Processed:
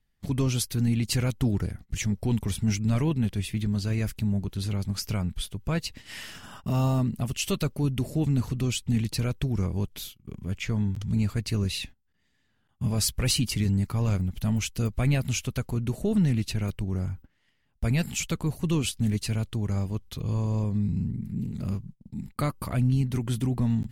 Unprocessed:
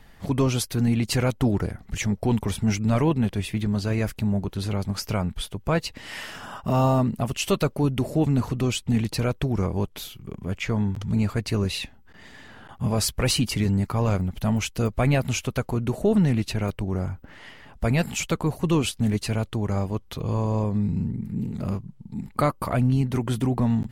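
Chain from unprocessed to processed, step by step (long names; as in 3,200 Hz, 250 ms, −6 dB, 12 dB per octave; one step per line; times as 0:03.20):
noise gate −39 dBFS, range −22 dB
parametric band 760 Hz −10.5 dB 2.7 octaves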